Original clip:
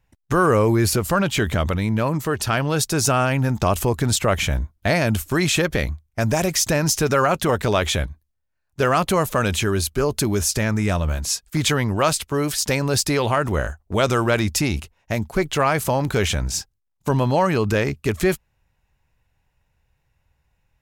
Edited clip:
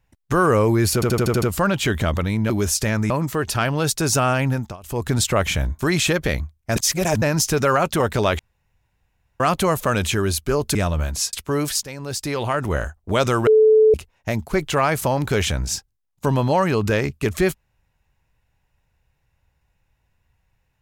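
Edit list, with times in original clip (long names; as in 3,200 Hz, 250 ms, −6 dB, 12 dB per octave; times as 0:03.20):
0:00.94: stutter 0.08 s, 7 plays
0:03.41–0:04.01: duck −24 dB, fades 0.28 s
0:04.71–0:05.28: remove
0:06.25–0:06.71: reverse
0:07.88–0:08.89: fill with room tone
0:10.24–0:10.84: move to 0:02.02
0:11.42–0:12.16: remove
0:12.66–0:13.64: fade in, from −16.5 dB
0:14.30–0:14.77: beep over 435 Hz −9.5 dBFS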